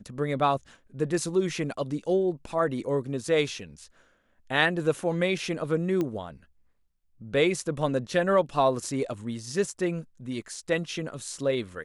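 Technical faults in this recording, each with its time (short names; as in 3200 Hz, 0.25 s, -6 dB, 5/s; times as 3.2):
6.01 pop -17 dBFS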